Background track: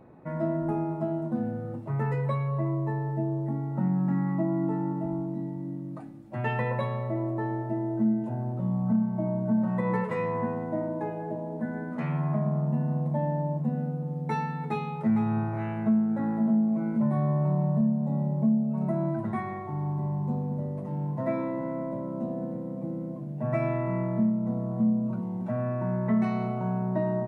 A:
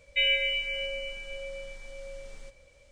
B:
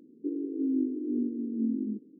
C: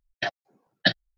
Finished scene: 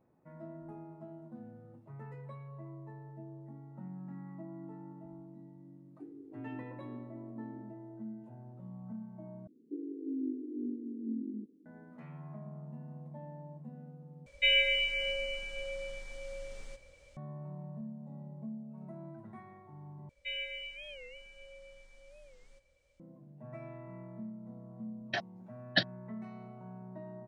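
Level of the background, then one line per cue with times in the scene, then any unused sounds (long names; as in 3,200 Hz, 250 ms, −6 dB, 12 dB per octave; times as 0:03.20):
background track −19 dB
0:05.76: mix in B −16.5 dB
0:09.47: overwrite with B −8 dB
0:14.26: overwrite with A −1 dB
0:20.09: overwrite with A −14 dB + wow of a warped record 45 rpm, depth 160 cents
0:24.91: mix in C −6.5 dB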